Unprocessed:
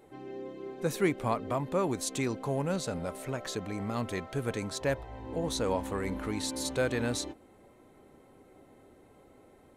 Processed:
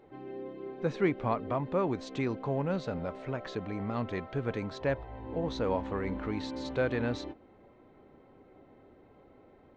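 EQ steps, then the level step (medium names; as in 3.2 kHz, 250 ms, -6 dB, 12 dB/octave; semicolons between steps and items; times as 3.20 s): Gaussian low-pass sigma 2.2 samples; 0.0 dB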